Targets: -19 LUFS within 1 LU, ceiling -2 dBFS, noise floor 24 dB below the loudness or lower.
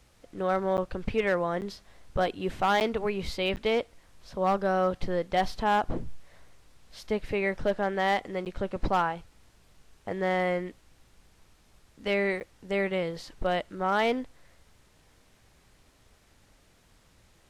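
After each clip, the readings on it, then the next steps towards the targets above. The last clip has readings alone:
clipped samples 0.3%; clipping level -17.5 dBFS; dropouts 6; longest dropout 9.2 ms; loudness -29.0 LUFS; peak level -17.5 dBFS; loudness target -19.0 LUFS
-> clip repair -17.5 dBFS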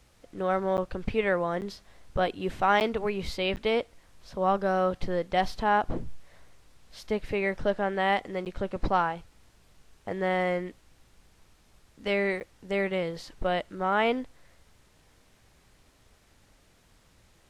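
clipped samples 0.0%; dropouts 6; longest dropout 9.2 ms
-> interpolate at 0.77/1.61/2.80/3.56/8.45/12.40 s, 9.2 ms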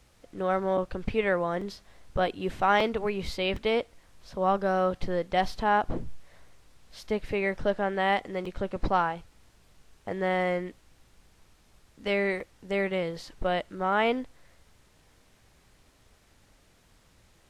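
dropouts 0; loudness -29.0 LUFS; peak level -10.5 dBFS; loudness target -19.0 LUFS
-> trim +10 dB; peak limiter -2 dBFS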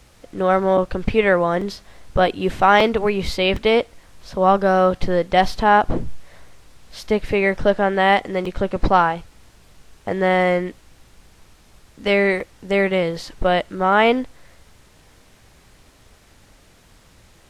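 loudness -19.0 LUFS; peak level -2.0 dBFS; noise floor -52 dBFS

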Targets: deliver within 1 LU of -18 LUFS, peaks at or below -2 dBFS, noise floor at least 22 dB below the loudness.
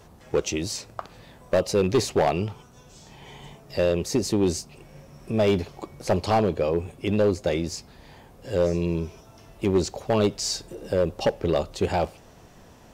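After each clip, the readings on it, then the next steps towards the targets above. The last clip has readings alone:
clipped samples 1.0%; clipping level -14.5 dBFS; loudness -25.5 LUFS; peak level -14.5 dBFS; loudness target -18.0 LUFS
-> clip repair -14.5 dBFS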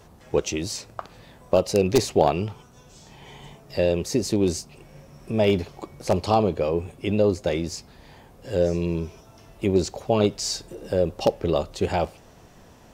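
clipped samples 0.0%; loudness -24.5 LUFS; peak level -5.5 dBFS; loudness target -18.0 LUFS
-> trim +6.5 dB; peak limiter -2 dBFS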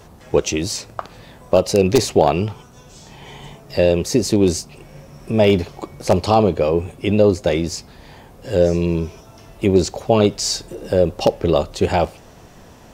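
loudness -18.5 LUFS; peak level -2.0 dBFS; noise floor -44 dBFS

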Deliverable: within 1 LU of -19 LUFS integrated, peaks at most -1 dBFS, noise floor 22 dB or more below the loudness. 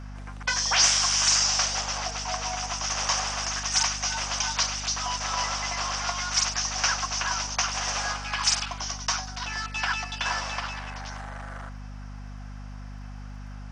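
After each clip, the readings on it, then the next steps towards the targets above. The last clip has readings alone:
tick rate 26 per s; hum 50 Hz; highest harmonic 250 Hz; hum level -36 dBFS; loudness -25.5 LUFS; peak level -9.0 dBFS; loudness target -19.0 LUFS
-> de-click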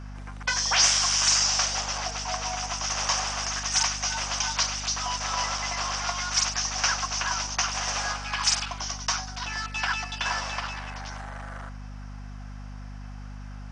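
tick rate 0 per s; hum 50 Hz; highest harmonic 250 Hz; hum level -37 dBFS
-> hum notches 50/100/150/200/250 Hz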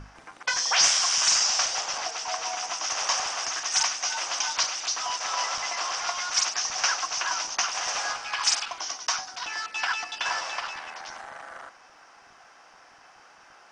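hum not found; loudness -25.5 LUFS; peak level -8.5 dBFS; loudness target -19.0 LUFS
-> trim +6.5 dB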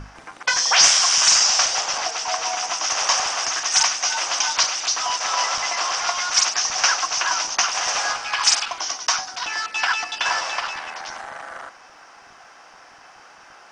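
loudness -19.0 LUFS; peak level -2.0 dBFS; noise floor -47 dBFS

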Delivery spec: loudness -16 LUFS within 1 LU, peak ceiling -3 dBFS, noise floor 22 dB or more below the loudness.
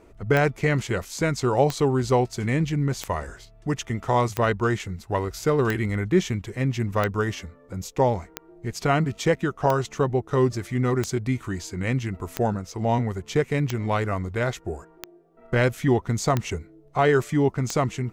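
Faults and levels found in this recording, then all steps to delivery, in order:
clicks found 14; loudness -24.5 LUFS; peak level -7.5 dBFS; loudness target -16.0 LUFS
-> de-click; trim +8.5 dB; peak limiter -3 dBFS

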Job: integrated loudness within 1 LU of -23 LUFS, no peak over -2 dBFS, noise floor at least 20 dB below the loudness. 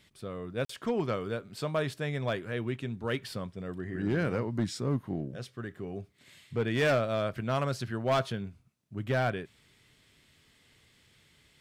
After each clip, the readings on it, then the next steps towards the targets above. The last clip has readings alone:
clipped samples 0.8%; clipping level -21.5 dBFS; dropouts 1; longest dropout 44 ms; loudness -32.5 LUFS; peak level -21.5 dBFS; loudness target -23.0 LUFS
-> clip repair -21.5 dBFS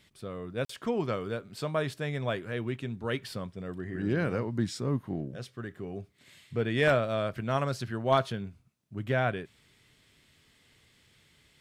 clipped samples 0.0%; dropouts 1; longest dropout 44 ms
-> interpolate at 0.65 s, 44 ms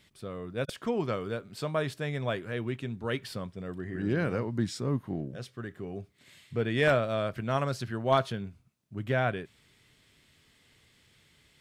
dropouts 0; loudness -32.0 LUFS; peak level -12.5 dBFS; loudness target -23.0 LUFS
-> trim +9 dB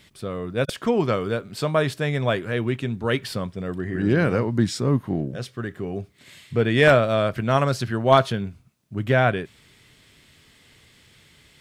loudness -23.0 LUFS; peak level -3.5 dBFS; noise floor -56 dBFS

